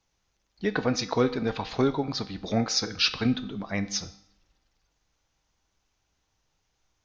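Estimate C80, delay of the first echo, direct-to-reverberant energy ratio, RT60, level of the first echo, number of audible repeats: 17.0 dB, no echo audible, 10.0 dB, 0.70 s, no echo audible, no echo audible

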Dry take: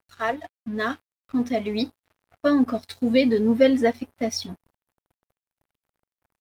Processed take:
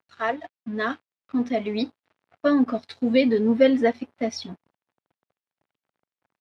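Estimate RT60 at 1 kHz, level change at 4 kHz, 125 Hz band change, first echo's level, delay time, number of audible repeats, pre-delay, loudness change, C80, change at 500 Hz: no reverb audible, −2.5 dB, −2.0 dB, no echo audible, no echo audible, no echo audible, no reverb audible, 0.0 dB, no reverb audible, 0.0 dB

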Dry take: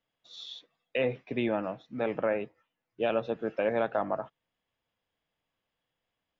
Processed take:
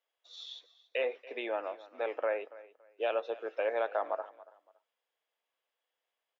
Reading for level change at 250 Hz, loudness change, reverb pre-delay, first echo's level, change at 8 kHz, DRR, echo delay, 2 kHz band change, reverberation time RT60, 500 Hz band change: −15.0 dB, −4.0 dB, no reverb audible, −19.0 dB, can't be measured, no reverb audible, 282 ms, −2.5 dB, no reverb audible, −3.5 dB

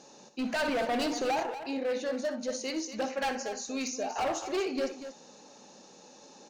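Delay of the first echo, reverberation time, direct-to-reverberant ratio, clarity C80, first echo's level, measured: 62 ms, no reverb audible, no reverb audible, no reverb audible, −12.5 dB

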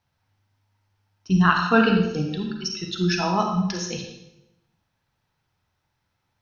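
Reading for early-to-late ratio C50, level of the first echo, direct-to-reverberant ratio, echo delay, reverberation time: 4.0 dB, no echo audible, 2.5 dB, no echo audible, 0.90 s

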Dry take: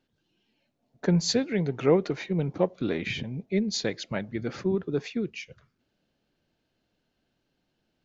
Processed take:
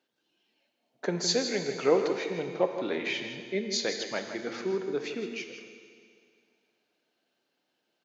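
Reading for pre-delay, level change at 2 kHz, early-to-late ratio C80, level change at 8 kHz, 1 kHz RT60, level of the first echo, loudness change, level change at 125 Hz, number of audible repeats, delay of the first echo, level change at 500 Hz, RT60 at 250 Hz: 9 ms, +1.5 dB, 6.5 dB, can't be measured, 2.2 s, −10.0 dB, −2.5 dB, −13.0 dB, 1, 161 ms, −0.5 dB, 2.2 s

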